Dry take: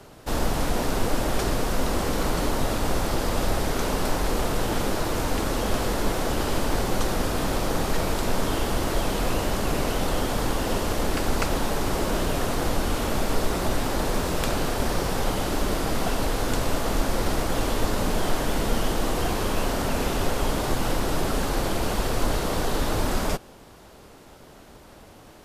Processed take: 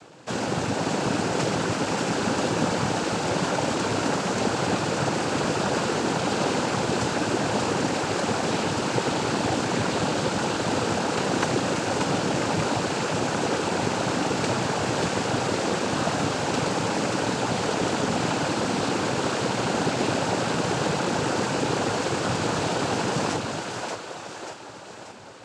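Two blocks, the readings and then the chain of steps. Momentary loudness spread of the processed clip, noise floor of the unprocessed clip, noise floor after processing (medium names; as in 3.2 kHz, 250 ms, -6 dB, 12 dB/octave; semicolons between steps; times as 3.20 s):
2 LU, -48 dBFS, -38 dBFS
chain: two-band feedback delay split 410 Hz, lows 205 ms, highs 585 ms, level -3.5 dB; noise-vocoded speech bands 8; trim +1 dB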